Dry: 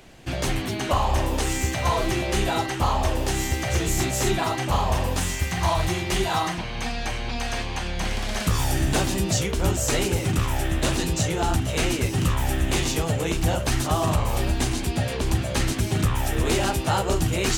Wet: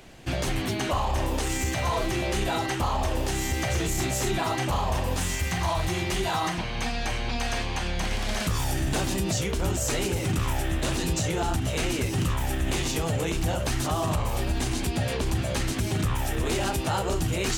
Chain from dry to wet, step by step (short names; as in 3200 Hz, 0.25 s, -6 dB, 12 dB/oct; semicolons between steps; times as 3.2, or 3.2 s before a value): limiter -18 dBFS, peak gain reduction 5.5 dB